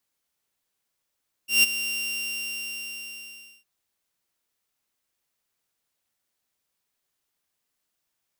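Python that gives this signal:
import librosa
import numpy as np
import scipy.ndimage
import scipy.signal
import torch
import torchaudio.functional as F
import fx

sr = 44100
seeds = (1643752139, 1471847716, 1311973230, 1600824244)

y = fx.adsr_tone(sr, wave='saw', hz=2770.0, attack_ms=151.0, decay_ms=21.0, sustain_db=-13.0, held_s=0.4, release_ms=1760.0, level_db=-11.0)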